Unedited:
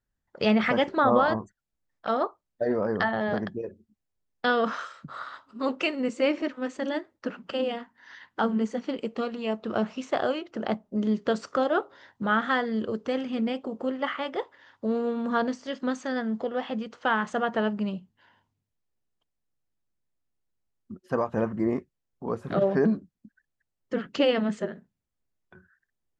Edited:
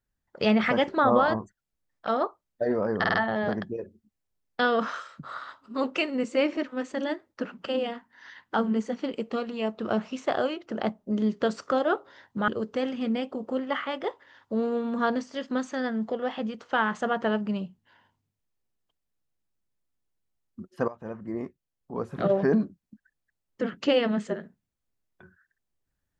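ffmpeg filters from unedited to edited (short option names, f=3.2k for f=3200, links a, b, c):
-filter_complex "[0:a]asplit=6[a][b][c][d][e][f];[a]atrim=end=3.042[g];[b]atrim=start=2.988:end=3.042[h];[c]atrim=start=2.988:end=3.042[i];[d]atrim=start=2.988:end=12.332[j];[e]atrim=start=12.798:end=21.2,asetpts=PTS-STARTPTS,afade=t=out:st=8.398:d=0.004:c=hsin:silence=0.158489[k];[f]atrim=start=21.2,asetpts=PTS-STARTPTS,afade=t=in:d=1.38:silence=0.158489[l];[g][h]acrossfade=d=0.004:c1=hsin:c2=hsin[m];[m][i]acrossfade=d=0.004:c1=hsin:c2=hsin[n];[n][j]acrossfade=d=0.004:c1=hsin:c2=hsin[o];[k][l]concat=n=2:v=0:a=1[p];[o][p]acrossfade=d=0.004:c1=hsin:c2=hsin"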